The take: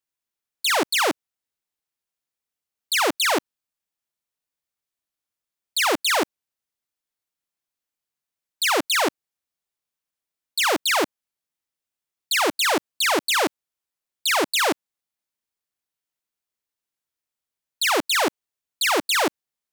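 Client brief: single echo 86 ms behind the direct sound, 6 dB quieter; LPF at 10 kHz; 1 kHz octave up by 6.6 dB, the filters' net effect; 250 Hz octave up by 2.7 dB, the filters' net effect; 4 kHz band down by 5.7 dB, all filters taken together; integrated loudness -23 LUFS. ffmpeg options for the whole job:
-af "lowpass=10000,equalizer=f=250:t=o:g=3,equalizer=f=1000:t=o:g=8.5,equalizer=f=4000:t=o:g=-8,aecho=1:1:86:0.501,volume=0.631"

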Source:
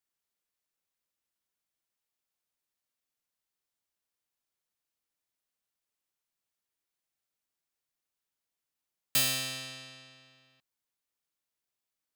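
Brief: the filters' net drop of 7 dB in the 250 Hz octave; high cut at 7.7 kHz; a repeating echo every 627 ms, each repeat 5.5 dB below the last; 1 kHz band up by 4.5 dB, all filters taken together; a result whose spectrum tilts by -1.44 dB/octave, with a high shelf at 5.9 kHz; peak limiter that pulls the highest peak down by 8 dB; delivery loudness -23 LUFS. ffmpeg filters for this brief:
-af "lowpass=7700,equalizer=f=250:t=o:g=-8.5,equalizer=f=1000:t=o:g=7,highshelf=f=5900:g=-7.5,alimiter=level_in=1.58:limit=0.0631:level=0:latency=1,volume=0.631,aecho=1:1:627|1254|1881|2508|3135|3762|4389:0.531|0.281|0.149|0.079|0.0419|0.0222|0.0118,volume=7.08"

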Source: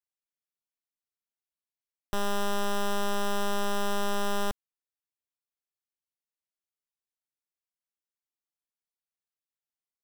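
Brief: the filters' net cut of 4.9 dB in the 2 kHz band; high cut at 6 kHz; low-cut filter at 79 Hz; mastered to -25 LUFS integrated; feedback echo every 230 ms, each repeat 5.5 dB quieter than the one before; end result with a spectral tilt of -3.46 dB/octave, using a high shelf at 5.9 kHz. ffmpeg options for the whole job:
-af "highpass=79,lowpass=6000,equalizer=f=2000:t=o:g=-7.5,highshelf=f=5900:g=4,aecho=1:1:230|460|690|920|1150|1380|1610:0.531|0.281|0.149|0.079|0.0419|0.0222|0.0118,volume=2.37"

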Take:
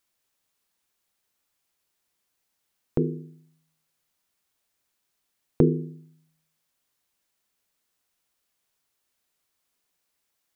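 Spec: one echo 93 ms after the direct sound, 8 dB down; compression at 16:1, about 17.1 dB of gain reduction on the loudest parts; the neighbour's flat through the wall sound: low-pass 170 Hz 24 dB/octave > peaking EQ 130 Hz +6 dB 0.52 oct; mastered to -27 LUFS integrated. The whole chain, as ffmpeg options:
-af "acompressor=threshold=0.0316:ratio=16,lowpass=f=170:w=0.5412,lowpass=f=170:w=1.3066,equalizer=f=130:t=o:w=0.52:g=6,aecho=1:1:93:0.398,volume=6.31"

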